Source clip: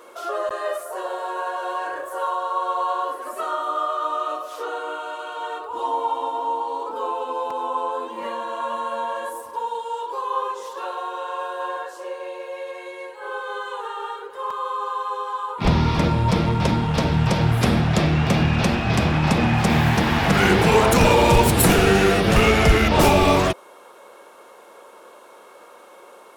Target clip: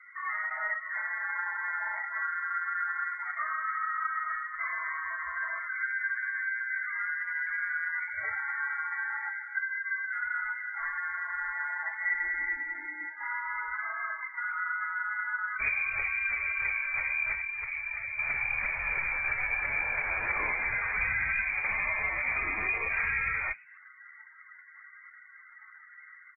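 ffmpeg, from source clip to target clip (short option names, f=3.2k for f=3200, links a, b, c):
-filter_complex "[0:a]acompressor=threshold=-27dB:ratio=4,asettb=1/sr,asplit=3[a][b][c];[a]atrim=end=11.854[d];[b]atrim=start=11.85:end=12.54,asetpts=PTS-STARTPTS,afade=t=in:d=0.004:c=qsin,afade=t=out:st=0.686:d=0.004:c=qsin,equalizer=f=670:w=0.3:g=5[e];[c]atrim=start=12.536[f];[d][e]acrossfade=d=0.004:c1=hsin:c2=qsin[g];[g][f]acrossfade=d=0.004:c1=qsin:c2=hsin,lowpass=f=2.1k:t=q:w=0.5098,lowpass=f=2.1k:t=q:w=0.6013,lowpass=f=2.1k:t=q:w=0.9,lowpass=f=2.1k:t=q:w=2.563,afreqshift=-2500,asubboost=boost=5.5:cutoff=96,asplit=5[h][i][j][k][l];[i]adelay=122,afreqshift=120,volume=-21dB[m];[j]adelay=244,afreqshift=240,volume=-26.2dB[n];[k]adelay=366,afreqshift=360,volume=-31.4dB[o];[l]adelay=488,afreqshift=480,volume=-36.6dB[p];[h][m][n][o][p]amix=inputs=5:normalize=0,asettb=1/sr,asplit=3[q][r][s];[q]atrim=end=17.334[t];[r]atrim=start=17.33:end=18.19,asetpts=PTS-STARTPTS,afade=t=in:d=0.004:c=qsin,afade=t=out:st=0.856:d=0.004:c=qsin,acrossover=split=380|1300[u][v][w];[u]acompressor=threshold=-51dB:ratio=4[x];[v]acompressor=threshold=-48dB:ratio=4[y];[w]acompressor=threshold=-31dB:ratio=4[z];[x][y][z]amix=inputs=3:normalize=0[aa];[s]atrim=start=18.186[ab];[t][aa]acrossfade=d=0.004:c1=hsin:c2=qsin[ac];[ac][ab]acrossfade=d=0.004:c1=qsin:c2=hsin,afftdn=nr=33:nf=-41,volume=-3.5dB" -ar 32000 -c:a aac -b:a 16k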